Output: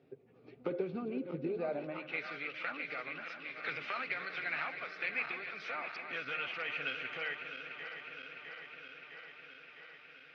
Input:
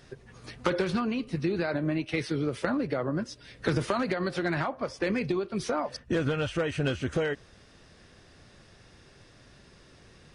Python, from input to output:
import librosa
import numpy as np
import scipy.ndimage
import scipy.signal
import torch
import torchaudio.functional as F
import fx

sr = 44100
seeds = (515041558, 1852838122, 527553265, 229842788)

y = fx.reverse_delay_fb(x, sr, ms=329, feedback_pct=84, wet_db=-9)
y = fx.filter_sweep_bandpass(y, sr, from_hz=360.0, to_hz=1800.0, start_s=1.42, end_s=2.39, q=1.7)
y = fx.cabinet(y, sr, low_hz=130.0, low_slope=12, high_hz=4600.0, hz=(210.0, 350.0, 570.0, 1000.0, 1700.0, 2400.0), db=(-8, -9, -5, -9, -8, 8))
y = y * librosa.db_to_amplitude(1.0)